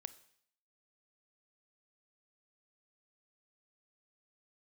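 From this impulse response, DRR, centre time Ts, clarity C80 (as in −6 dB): 14.0 dB, 4 ms, 19.0 dB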